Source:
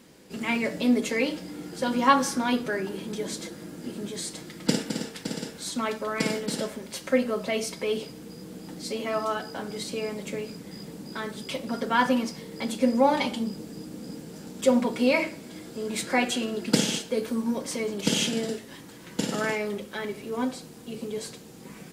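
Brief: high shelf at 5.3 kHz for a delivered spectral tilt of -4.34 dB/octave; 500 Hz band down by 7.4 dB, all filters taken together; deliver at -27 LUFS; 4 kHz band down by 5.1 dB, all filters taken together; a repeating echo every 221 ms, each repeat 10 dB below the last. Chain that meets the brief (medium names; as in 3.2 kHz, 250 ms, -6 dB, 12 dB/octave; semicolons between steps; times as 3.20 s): peaking EQ 500 Hz -8.5 dB; peaking EQ 4 kHz -4 dB; treble shelf 5.3 kHz -6.5 dB; feedback delay 221 ms, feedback 32%, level -10 dB; trim +4 dB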